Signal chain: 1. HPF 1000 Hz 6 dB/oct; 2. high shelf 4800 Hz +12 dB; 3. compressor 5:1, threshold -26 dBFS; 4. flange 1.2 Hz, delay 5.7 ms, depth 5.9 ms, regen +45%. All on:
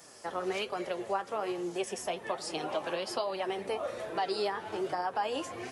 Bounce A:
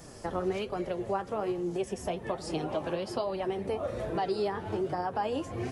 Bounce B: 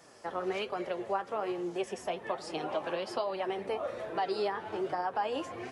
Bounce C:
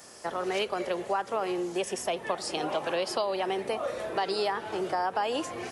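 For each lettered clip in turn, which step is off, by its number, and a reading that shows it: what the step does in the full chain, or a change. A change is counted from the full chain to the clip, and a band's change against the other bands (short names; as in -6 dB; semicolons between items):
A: 1, 125 Hz band +14.0 dB; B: 2, 8 kHz band -8.5 dB; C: 4, loudness change +4.0 LU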